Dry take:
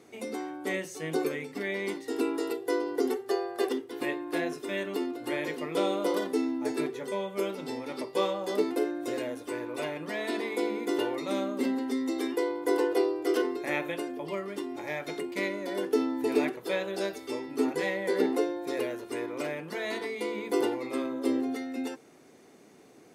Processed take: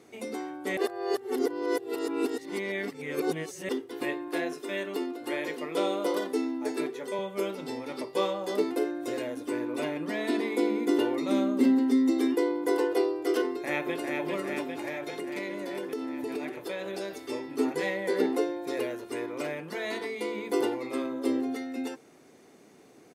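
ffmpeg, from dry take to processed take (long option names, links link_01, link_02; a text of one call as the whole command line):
ffmpeg -i in.wav -filter_complex "[0:a]asettb=1/sr,asplit=3[link_01][link_02][link_03];[link_01]atrim=end=4.284[link_04];[link_02]atrim=start=4.28:end=7.19,asetpts=PTS-STARTPTS,afade=type=in:duration=0.004:curve=qsin,afade=type=out:start_time=2.906:duration=0.004:curve=qsin,highpass=210[link_05];[link_03]atrim=start=7.186[link_06];[link_04][link_05]acrossfade=duration=0.004:curve1=hsin:curve2=qsin[link_07];[link_07][link_06]acrossfade=duration=0.004:curve1=qsin:curve2=hsin,asettb=1/sr,asplit=3[link_08][link_09][link_10];[link_08]atrim=end=9.374[link_11];[link_09]atrim=start=9.37:end=12.67,asetpts=PTS-STARTPTS,afade=type=in:duration=0.004:curve=qsin,afade=type=out:start_time=3.296:duration=0.004:curve=qsin,equalizer=frequency=270:width=2:gain=8[link_12];[link_10]atrim=start=12.666[link_13];[link_11][link_12]acrossfade=duration=0.004:curve1=hsin:curve2=qsin[link_14];[link_14][link_13]acrossfade=duration=0.004:curve1=qsin:curve2=hsin,asplit=2[link_15][link_16];[link_16]afade=type=in:start_time=13.46:duration=0.01,afade=type=out:start_time=14.24:duration=0.01,aecho=0:1:400|800|1200|1600|2000|2400|2800|3200|3600|4000|4400|4800:0.668344|0.501258|0.375943|0.281958|0.211468|0.158601|0.118951|0.0892131|0.0669099|0.0501824|0.0376368|0.0282276[link_17];[link_15][link_17]amix=inputs=2:normalize=0,asettb=1/sr,asplit=3[link_18][link_19][link_20];[link_18]atrim=end=14.884[link_21];[link_19]atrim=start=14.88:end=17.23,asetpts=PTS-STARTPTS,afade=type=in:duration=0.004:curve=qsin,afade=type=out:start_time=2.346:duration=0.004:curve=qsin,acompressor=threshold=-31dB:ratio=4:attack=3.2:release=140:knee=1:detection=peak[link_22];[link_20]atrim=start=17.226[link_23];[link_21][link_22]acrossfade=duration=0.004:curve1=hsin:curve2=qsin[link_24];[link_24][link_23]acrossfade=duration=0.004:curve1=qsin:curve2=hsin,asplit=3[link_25][link_26][link_27];[link_25]atrim=end=0.772[link_28];[link_26]atrim=start=0.768:end=3.692,asetpts=PTS-STARTPTS,areverse[link_29];[link_27]atrim=start=3.688[link_30];[link_28][link_29]acrossfade=duration=0.004:curve1=hsin:curve2=hsin[link_31];[link_31][link_30]acrossfade=duration=0.004:curve1=hsin:curve2=hsin" out.wav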